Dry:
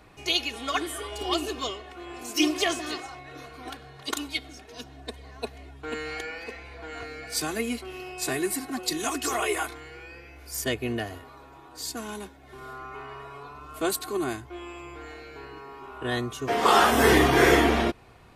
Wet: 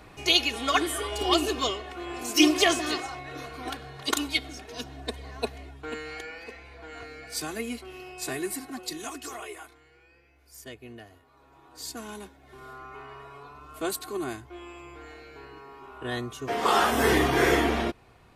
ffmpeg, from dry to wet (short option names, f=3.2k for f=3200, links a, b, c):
-af "volume=15.5dB,afade=t=out:st=5.4:d=0.62:silence=0.398107,afade=t=out:st=8.53:d=1.05:silence=0.281838,afade=t=in:st=11.26:d=0.58:silence=0.266073"